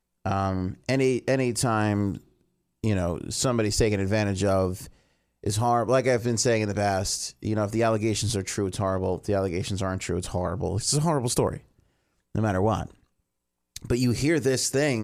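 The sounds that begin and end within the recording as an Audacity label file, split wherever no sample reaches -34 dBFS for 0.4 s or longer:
2.840000	4.860000	sound
5.440000	11.570000	sound
12.350000	12.860000	sound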